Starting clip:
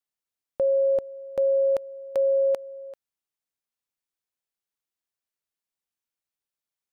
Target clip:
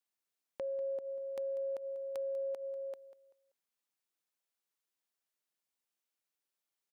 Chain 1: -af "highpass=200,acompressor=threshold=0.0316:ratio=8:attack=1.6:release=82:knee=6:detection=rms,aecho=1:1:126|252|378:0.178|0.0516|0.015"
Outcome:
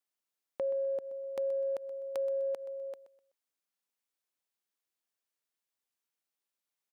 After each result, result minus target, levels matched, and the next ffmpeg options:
echo 67 ms early; compression: peak gain reduction -5.5 dB
-af "highpass=200,acompressor=threshold=0.0316:ratio=8:attack=1.6:release=82:knee=6:detection=rms,aecho=1:1:193|386|579:0.178|0.0516|0.015"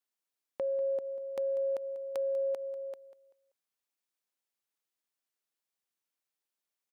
compression: peak gain reduction -5.5 dB
-af "highpass=200,acompressor=threshold=0.015:ratio=8:attack=1.6:release=82:knee=6:detection=rms,aecho=1:1:193|386|579:0.178|0.0516|0.015"

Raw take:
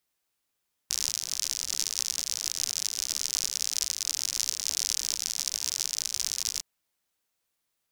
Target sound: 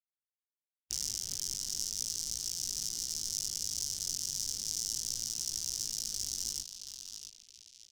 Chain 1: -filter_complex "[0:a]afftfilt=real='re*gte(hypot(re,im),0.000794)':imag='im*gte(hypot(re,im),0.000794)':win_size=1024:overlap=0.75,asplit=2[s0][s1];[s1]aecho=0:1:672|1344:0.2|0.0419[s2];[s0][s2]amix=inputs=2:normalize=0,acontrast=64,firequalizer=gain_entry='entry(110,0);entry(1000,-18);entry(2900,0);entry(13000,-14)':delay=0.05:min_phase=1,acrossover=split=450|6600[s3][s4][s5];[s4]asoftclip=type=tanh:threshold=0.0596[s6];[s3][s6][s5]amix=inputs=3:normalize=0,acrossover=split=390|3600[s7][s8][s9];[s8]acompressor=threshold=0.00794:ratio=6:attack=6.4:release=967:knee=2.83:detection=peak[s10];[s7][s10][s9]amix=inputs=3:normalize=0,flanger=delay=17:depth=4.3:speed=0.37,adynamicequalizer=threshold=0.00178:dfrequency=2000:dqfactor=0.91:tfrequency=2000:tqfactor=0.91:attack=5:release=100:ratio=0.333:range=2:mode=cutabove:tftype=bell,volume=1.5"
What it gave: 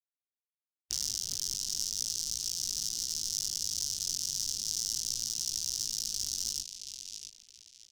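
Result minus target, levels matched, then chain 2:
saturation: distortion -5 dB
-filter_complex "[0:a]afftfilt=real='re*gte(hypot(re,im),0.000794)':imag='im*gte(hypot(re,im),0.000794)':win_size=1024:overlap=0.75,asplit=2[s0][s1];[s1]aecho=0:1:672|1344:0.2|0.0419[s2];[s0][s2]amix=inputs=2:normalize=0,acontrast=64,firequalizer=gain_entry='entry(110,0);entry(1000,-18);entry(2900,0);entry(13000,-14)':delay=0.05:min_phase=1,acrossover=split=450|6600[s3][s4][s5];[s4]asoftclip=type=tanh:threshold=0.0188[s6];[s3][s6][s5]amix=inputs=3:normalize=0,acrossover=split=390|3600[s7][s8][s9];[s8]acompressor=threshold=0.00794:ratio=6:attack=6.4:release=967:knee=2.83:detection=peak[s10];[s7][s10][s9]amix=inputs=3:normalize=0,flanger=delay=17:depth=4.3:speed=0.37,adynamicequalizer=threshold=0.00178:dfrequency=2000:dqfactor=0.91:tfrequency=2000:tqfactor=0.91:attack=5:release=100:ratio=0.333:range=2:mode=cutabove:tftype=bell,volume=1.5"

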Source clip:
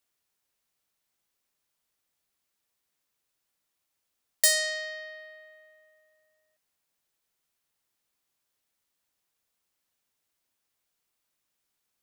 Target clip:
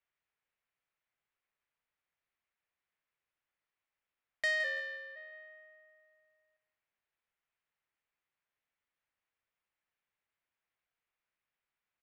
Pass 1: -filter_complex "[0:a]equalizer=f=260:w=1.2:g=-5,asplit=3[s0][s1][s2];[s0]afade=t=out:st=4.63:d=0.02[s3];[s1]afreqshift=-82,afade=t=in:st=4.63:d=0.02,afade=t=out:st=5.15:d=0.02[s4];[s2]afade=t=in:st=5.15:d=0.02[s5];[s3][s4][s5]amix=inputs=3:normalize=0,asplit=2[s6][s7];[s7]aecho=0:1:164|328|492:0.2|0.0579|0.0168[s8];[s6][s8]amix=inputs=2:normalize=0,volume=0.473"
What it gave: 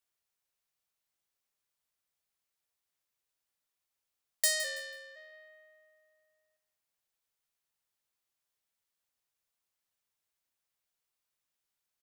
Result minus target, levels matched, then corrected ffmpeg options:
2 kHz band -8.0 dB
-filter_complex "[0:a]lowpass=f=2200:t=q:w=1.6,equalizer=f=260:w=1.2:g=-5,asplit=3[s0][s1][s2];[s0]afade=t=out:st=4.63:d=0.02[s3];[s1]afreqshift=-82,afade=t=in:st=4.63:d=0.02,afade=t=out:st=5.15:d=0.02[s4];[s2]afade=t=in:st=5.15:d=0.02[s5];[s3][s4][s5]amix=inputs=3:normalize=0,asplit=2[s6][s7];[s7]aecho=0:1:164|328|492:0.2|0.0579|0.0168[s8];[s6][s8]amix=inputs=2:normalize=0,volume=0.473"

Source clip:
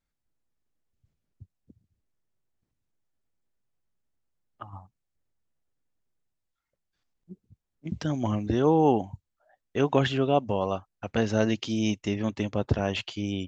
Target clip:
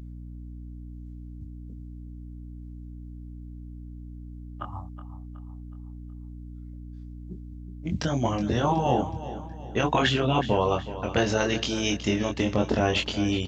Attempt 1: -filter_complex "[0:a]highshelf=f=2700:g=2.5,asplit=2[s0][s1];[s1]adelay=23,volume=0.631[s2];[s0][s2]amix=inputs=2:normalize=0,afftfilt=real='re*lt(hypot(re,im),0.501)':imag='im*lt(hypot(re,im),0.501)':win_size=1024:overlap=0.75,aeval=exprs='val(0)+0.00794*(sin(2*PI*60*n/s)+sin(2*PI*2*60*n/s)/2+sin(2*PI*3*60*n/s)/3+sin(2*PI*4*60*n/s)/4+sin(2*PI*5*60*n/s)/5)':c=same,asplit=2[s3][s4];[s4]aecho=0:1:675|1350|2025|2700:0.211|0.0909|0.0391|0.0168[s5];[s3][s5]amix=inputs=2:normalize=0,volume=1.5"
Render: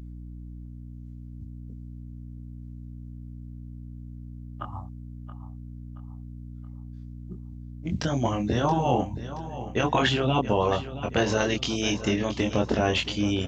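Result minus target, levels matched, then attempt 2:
echo 305 ms late
-filter_complex "[0:a]highshelf=f=2700:g=2.5,asplit=2[s0][s1];[s1]adelay=23,volume=0.631[s2];[s0][s2]amix=inputs=2:normalize=0,afftfilt=real='re*lt(hypot(re,im),0.501)':imag='im*lt(hypot(re,im),0.501)':win_size=1024:overlap=0.75,aeval=exprs='val(0)+0.00794*(sin(2*PI*60*n/s)+sin(2*PI*2*60*n/s)/2+sin(2*PI*3*60*n/s)/3+sin(2*PI*4*60*n/s)/4+sin(2*PI*5*60*n/s)/5)':c=same,asplit=2[s3][s4];[s4]aecho=0:1:370|740|1110|1480:0.211|0.0909|0.0391|0.0168[s5];[s3][s5]amix=inputs=2:normalize=0,volume=1.5"

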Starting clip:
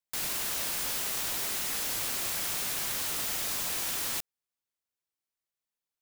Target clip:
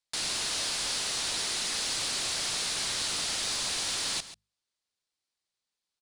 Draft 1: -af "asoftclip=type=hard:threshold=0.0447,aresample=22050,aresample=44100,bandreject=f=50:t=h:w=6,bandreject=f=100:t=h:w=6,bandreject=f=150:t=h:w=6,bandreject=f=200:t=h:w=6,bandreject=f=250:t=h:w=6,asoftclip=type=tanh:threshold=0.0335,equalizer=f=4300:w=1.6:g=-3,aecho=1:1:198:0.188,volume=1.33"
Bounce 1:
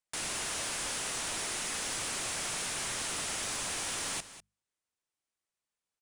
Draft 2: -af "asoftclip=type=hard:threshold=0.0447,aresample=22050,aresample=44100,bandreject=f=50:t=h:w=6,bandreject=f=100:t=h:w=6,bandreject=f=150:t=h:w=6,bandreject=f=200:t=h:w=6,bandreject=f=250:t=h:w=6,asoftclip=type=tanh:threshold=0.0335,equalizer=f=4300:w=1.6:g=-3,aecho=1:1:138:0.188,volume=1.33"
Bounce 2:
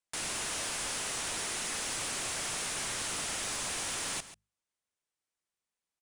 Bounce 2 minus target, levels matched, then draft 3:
4 kHz band -3.5 dB
-af "asoftclip=type=hard:threshold=0.0447,aresample=22050,aresample=44100,bandreject=f=50:t=h:w=6,bandreject=f=100:t=h:w=6,bandreject=f=150:t=h:w=6,bandreject=f=200:t=h:w=6,bandreject=f=250:t=h:w=6,asoftclip=type=tanh:threshold=0.0335,equalizer=f=4300:w=1.6:g=8,aecho=1:1:138:0.188,volume=1.33"

